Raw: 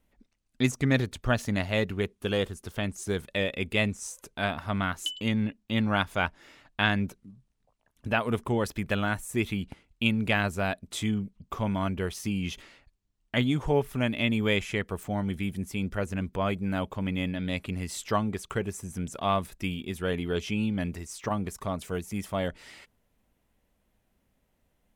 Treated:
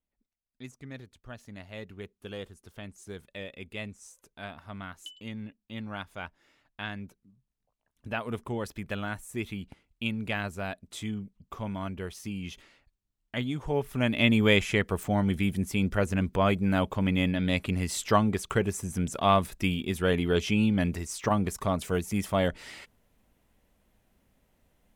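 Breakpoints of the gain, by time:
1.28 s -19 dB
2.12 s -12 dB
7.21 s -12 dB
8.24 s -6 dB
13.62 s -6 dB
14.24 s +4 dB

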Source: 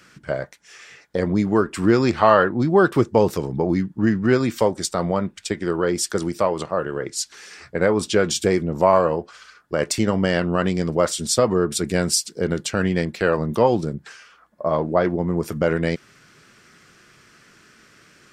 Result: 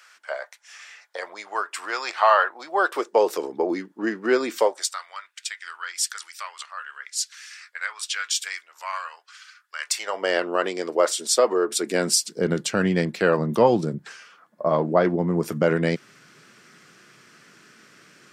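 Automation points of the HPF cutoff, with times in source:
HPF 24 dB/oct
2.52 s 700 Hz
3.47 s 330 Hz
4.59 s 330 Hz
5 s 1400 Hz
9.79 s 1400 Hz
10.31 s 350 Hz
11.73 s 350 Hz
12.34 s 130 Hz

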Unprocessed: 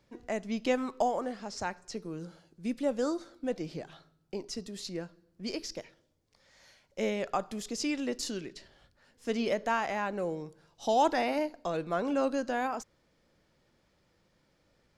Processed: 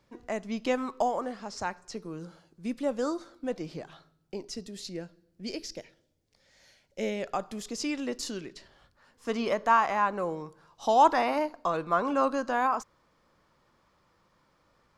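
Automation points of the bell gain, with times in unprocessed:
bell 1100 Hz 0.68 oct
3.88 s +5 dB
4.9 s -6.5 dB
7.04 s -6.5 dB
7.67 s +4.5 dB
8.53 s +4.5 dB
9.33 s +13.5 dB

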